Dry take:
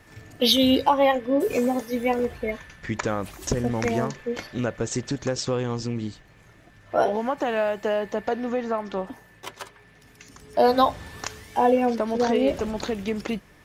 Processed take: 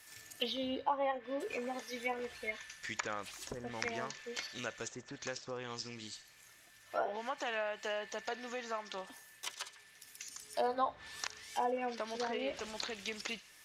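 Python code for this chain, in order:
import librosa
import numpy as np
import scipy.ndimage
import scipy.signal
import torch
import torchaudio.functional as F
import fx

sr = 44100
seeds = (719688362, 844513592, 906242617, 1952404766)

y = F.preemphasis(torch.from_numpy(x), 0.97).numpy()
y = fx.env_lowpass_down(y, sr, base_hz=1100.0, full_db=-35.0)
y = fx.echo_wet_highpass(y, sr, ms=66, feedback_pct=47, hz=3600.0, wet_db=-12.0)
y = y * librosa.db_to_amplitude(6.0)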